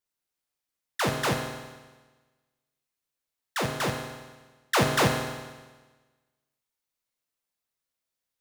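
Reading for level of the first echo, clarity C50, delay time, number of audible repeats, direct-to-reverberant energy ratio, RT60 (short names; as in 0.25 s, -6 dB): none, 4.5 dB, none, none, 1.0 dB, 1.3 s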